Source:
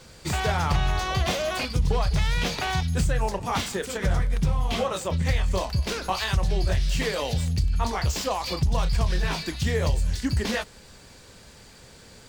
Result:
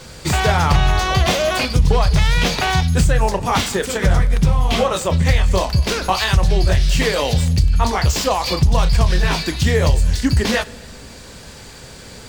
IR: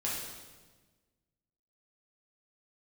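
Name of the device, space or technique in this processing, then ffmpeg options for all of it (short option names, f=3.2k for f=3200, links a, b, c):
ducked reverb: -filter_complex "[0:a]asplit=3[a][b][c];[1:a]atrim=start_sample=2205[d];[b][d]afir=irnorm=-1:irlink=0[e];[c]apad=whole_len=541789[f];[e][f]sidechaincompress=threshold=-34dB:ratio=8:attack=5.8:release=767,volume=-10dB[g];[a][g]amix=inputs=2:normalize=0,volume=8.5dB"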